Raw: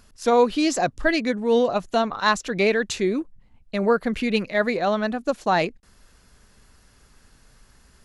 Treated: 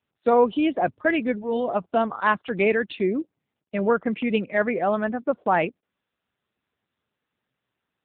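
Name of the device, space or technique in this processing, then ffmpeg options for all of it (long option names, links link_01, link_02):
mobile call with aggressive noise cancelling: -af "highpass=130,afftdn=noise_reduction=23:noise_floor=-37" -ar 8000 -c:a libopencore_amrnb -b:a 7950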